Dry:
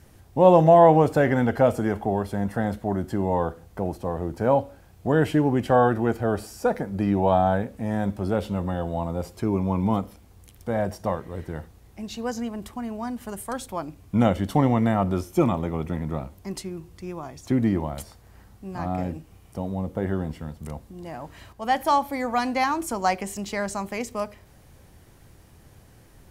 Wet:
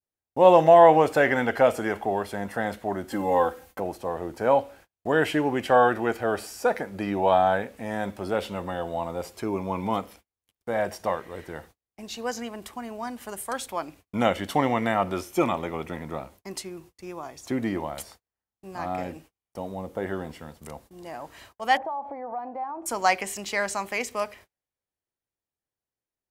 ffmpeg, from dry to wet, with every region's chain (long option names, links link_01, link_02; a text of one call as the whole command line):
ffmpeg -i in.wav -filter_complex "[0:a]asettb=1/sr,asplit=3[link_01][link_02][link_03];[link_01]atrim=end=3.114[link_04];[link_02]atrim=start=3.11:end=3.8,asetpts=PTS-STARTPTS,afade=type=in:duration=0.004:curve=qsin,afade=type=out:start_time=0.686:duration=0.004:curve=qsin,highshelf=frequency=11000:gain=10,aecho=1:1:3.8:0.86,atrim=end_sample=30429[link_05];[link_03]atrim=start=3.796[link_06];[link_04][link_05]acrossfade=duration=0.004:curve1=hsin:curve2=qsin[link_07];[link_07][link_06]acrossfade=duration=0.004:curve1=qsin:curve2=hsin,asettb=1/sr,asplit=3[link_08][link_09][link_10];[link_08]atrim=end=21.774[link_11];[link_09]atrim=start=21.77:end=22.86,asetpts=PTS-STARTPTS,afade=type=in:duration=0.004:curve=qsin,afade=type=out:start_time=1.086:duration=0.004:curve=qsin,lowshelf=frequency=63:gain=-11.5,acompressor=threshold=-33dB:ratio=16:attack=3.2:release=140:knee=1:detection=peak,lowpass=frequency=790:width_type=q:width=2.5[link_12];[link_10]atrim=start=22.856[link_13];[link_11][link_12]acrossfade=duration=0.004:curve1=hsin:curve2=qsin[link_14];[link_14][link_13]acrossfade=duration=0.004:curve1=qsin:curve2=hsin,bass=frequency=250:gain=-12,treble=frequency=4000:gain=2,agate=range=-38dB:threshold=-49dB:ratio=16:detection=peak,adynamicequalizer=threshold=0.00891:dfrequency=2300:dqfactor=0.95:tfrequency=2300:tqfactor=0.95:attack=5:release=100:ratio=0.375:range=3.5:mode=boostabove:tftype=bell" out.wav